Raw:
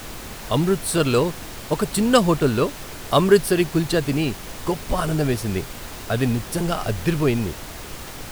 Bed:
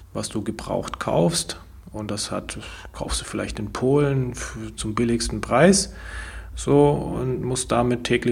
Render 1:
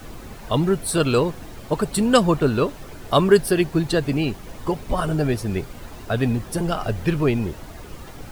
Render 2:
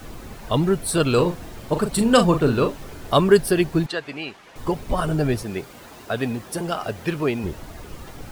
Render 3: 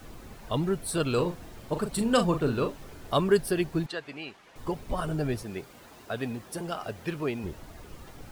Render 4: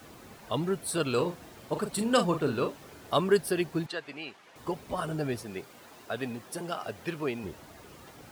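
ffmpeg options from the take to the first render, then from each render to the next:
-af "afftdn=nr=10:nf=-36"
-filter_complex "[0:a]asettb=1/sr,asplit=3[s0][s1][s2];[s0]atrim=end=1.144[s3];[s1]atrim=start=1.14:end=3.13,asetpts=PTS-STARTPTS,afade=t=in:d=0.004:c=qsin,afade=t=out:st=1.986:d=0.004:c=qsin,asplit=2[s4][s5];[s5]adelay=40,volume=0.398[s6];[s4][s6]amix=inputs=2:normalize=0,atrim=end_sample=87759[s7];[s2]atrim=start=3.126[s8];[s3][s7]acrossfade=d=0.004:c1=hsin:c2=qsin[s9];[s9][s8]acrossfade=d=0.004:c1=qsin:c2=hsin,asettb=1/sr,asplit=3[s10][s11][s12];[s10]atrim=end=3.864[s13];[s11]atrim=start=3.86:end=4.56,asetpts=PTS-STARTPTS,afade=t=in:d=0.004:c=qsin,afade=t=out:st=0.696:d=0.004:c=qsin,bandpass=f=1900:t=q:w=0.63[s14];[s12]atrim=start=4.556[s15];[s13][s14]acrossfade=d=0.004:c1=hsin:c2=qsin[s16];[s16][s15]acrossfade=d=0.004:c1=qsin:c2=hsin,asettb=1/sr,asplit=3[s17][s18][s19];[s17]atrim=end=5.434[s20];[s18]atrim=start=5.43:end=7.44,asetpts=PTS-STARTPTS,afade=t=in:d=0.004:c=qsin,afade=t=out:st=2.006:d=0.004:c=qsin,highpass=f=290:p=1[s21];[s19]atrim=start=7.436[s22];[s20][s21]acrossfade=d=0.004:c1=hsin:c2=qsin[s23];[s23][s22]acrossfade=d=0.004:c1=qsin:c2=hsin"
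-af "volume=0.398"
-af "highpass=76,lowshelf=f=200:g=-6"

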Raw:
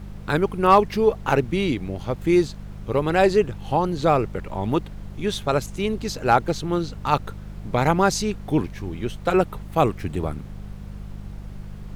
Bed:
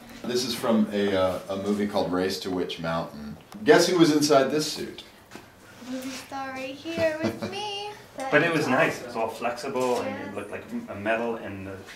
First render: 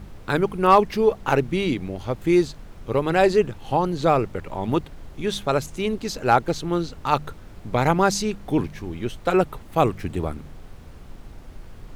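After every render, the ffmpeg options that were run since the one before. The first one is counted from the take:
-af "bandreject=f=50:t=h:w=4,bandreject=f=100:t=h:w=4,bandreject=f=150:t=h:w=4,bandreject=f=200:t=h:w=4"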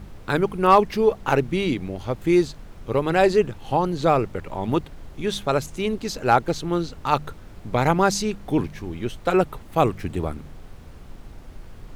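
-af anull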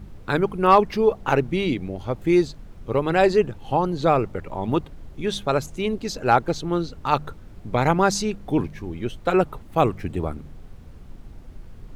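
-af "afftdn=nr=6:nf=-43"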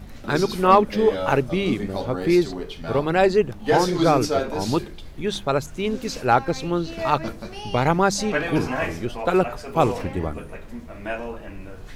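-filter_complex "[1:a]volume=0.631[s0];[0:a][s0]amix=inputs=2:normalize=0"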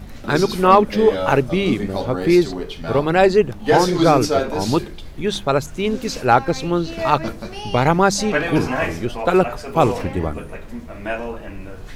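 -af "volume=1.58,alimiter=limit=0.891:level=0:latency=1"

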